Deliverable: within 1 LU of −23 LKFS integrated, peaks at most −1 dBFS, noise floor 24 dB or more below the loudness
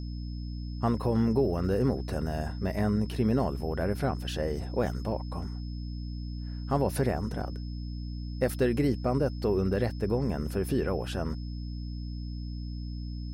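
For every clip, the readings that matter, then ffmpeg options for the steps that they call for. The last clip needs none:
mains hum 60 Hz; hum harmonics up to 300 Hz; level of the hum −34 dBFS; interfering tone 5,200 Hz; level of the tone −53 dBFS; integrated loudness −31.0 LKFS; sample peak −15.0 dBFS; target loudness −23.0 LKFS
→ -af "bandreject=frequency=60:width_type=h:width=6,bandreject=frequency=120:width_type=h:width=6,bandreject=frequency=180:width_type=h:width=6,bandreject=frequency=240:width_type=h:width=6,bandreject=frequency=300:width_type=h:width=6"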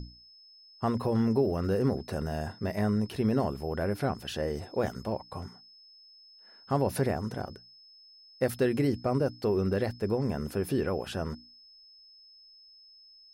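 mains hum none found; interfering tone 5,200 Hz; level of the tone −53 dBFS
→ -af "bandreject=frequency=5200:width=30"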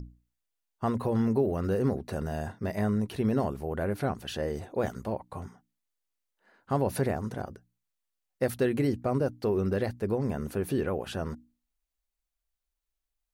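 interfering tone none found; integrated loudness −30.5 LKFS; sample peak −15.5 dBFS; target loudness −23.0 LKFS
→ -af "volume=7.5dB"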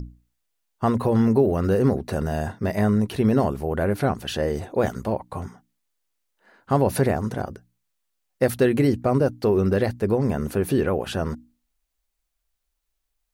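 integrated loudness −23.0 LKFS; sample peak −8.0 dBFS; background noise floor −77 dBFS

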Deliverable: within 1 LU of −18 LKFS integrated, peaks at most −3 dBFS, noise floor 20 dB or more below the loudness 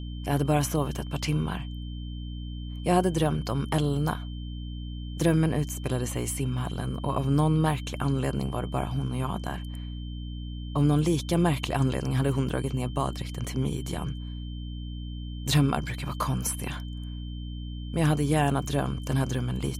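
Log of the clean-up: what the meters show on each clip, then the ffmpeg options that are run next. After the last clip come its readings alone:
mains hum 60 Hz; hum harmonics up to 300 Hz; level of the hum −33 dBFS; interfering tone 3,100 Hz; level of the tone −49 dBFS; integrated loudness −28.5 LKFS; sample peak −11.0 dBFS; target loudness −18.0 LKFS
→ -af "bandreject=frequency=60:width_type=h:width=4,bandreject=frequency=120:width_type=h:width=4,bandreject=frequency=180:width_type=h:width=4,bandreject=frequency=240:width_type=h:width=4,bandreject=frequency=300:width_type=h:width=4"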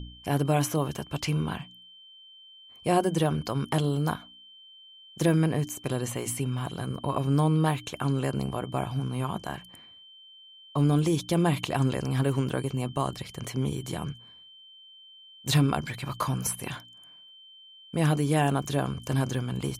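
mains hum none found; interfering tone 3,100 Hz; level of the tone −49 dBFS
→ -af "bandreject=frequency=3100:width=30"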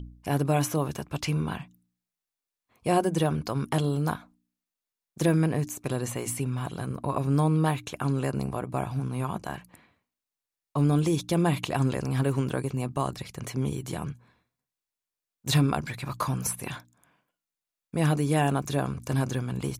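interfering tone none found; integrated loudness −28.0 LKFS; sample peak −11.5 dBFS; target loudness −18.0 LKFS
→ -af "volume=10dB,alimiter=limit=-3dB:level=0:latency=1"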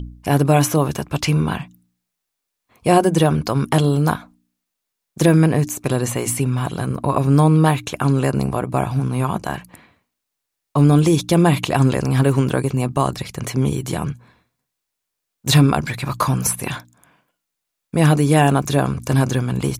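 integrated loudness −18.0 LKFS; sample peak −3.0 dBFS; background noise floor −80 dBFS

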